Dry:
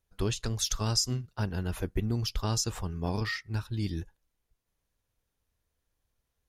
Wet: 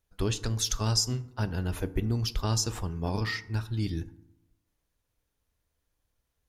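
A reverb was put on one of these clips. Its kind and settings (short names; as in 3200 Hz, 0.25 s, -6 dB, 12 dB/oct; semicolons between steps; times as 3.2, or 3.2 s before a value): FDN reverb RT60 0.86 s, low-frequency decay 1.1×, high-frequency decay 0.45×, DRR 13 dB; gain +1 dB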